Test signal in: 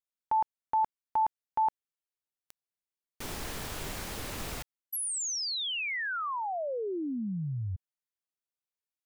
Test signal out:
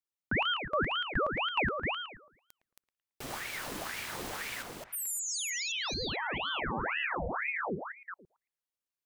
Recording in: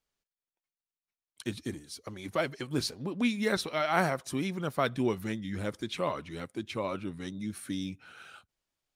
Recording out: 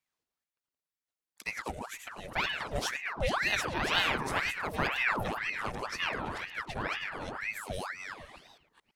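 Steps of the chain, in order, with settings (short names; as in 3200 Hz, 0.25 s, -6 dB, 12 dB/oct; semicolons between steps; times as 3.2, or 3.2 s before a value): reverse delay 0.22 s, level -5 dB; on a send: narrowing echo 0.111 s, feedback 41%, band-pass 500 Hz, level -4 dB; on the sum: ring modulator with a swept carrier 1300 Hz, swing 80%, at 2 Hz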